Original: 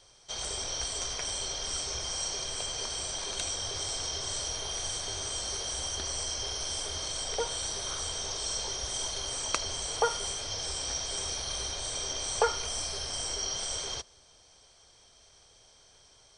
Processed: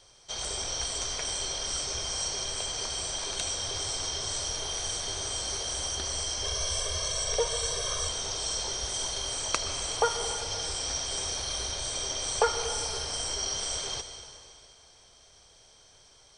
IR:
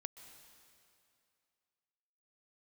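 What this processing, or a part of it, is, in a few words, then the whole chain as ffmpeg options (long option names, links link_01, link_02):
stairwell: -filter_complex "[1:a]atrim=start_sample=2205[link_01];[0:a][link_01]afir=irnorm=-1:irlink=0,asettb=1/sr,asplit=3[link_02][link_03][link_04];[link_02]atrim=end=6.444[link_05];[link_03]atrim=start=6.44:end=8.09,asetpts=PTS-STARTPTS,afade=type=in:duration=0.004:curve=qsin,afade=type=out:start_time=1.646:duration=0.004:curve=qsin,aecho=1:1:1.8:0.76,atrim=end_sample=72765[link_06];[link_04]atrim=start=8.086[link_07];[link_05][link_06]acrossfade=duration=0.004:curve1=hsin:curve2=qsin[link_08];[link_08][link_07]acrossfade=duration=0.004:curve1=qsin:curve2=hsin,volume=6dB"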